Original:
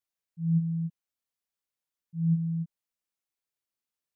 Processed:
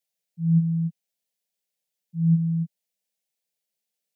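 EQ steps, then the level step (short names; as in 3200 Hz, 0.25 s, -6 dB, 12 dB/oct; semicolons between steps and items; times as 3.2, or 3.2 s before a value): HPF 140 Hz 24 dB/oct; fixed phaser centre 310 Hz, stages 6; +7.0 dB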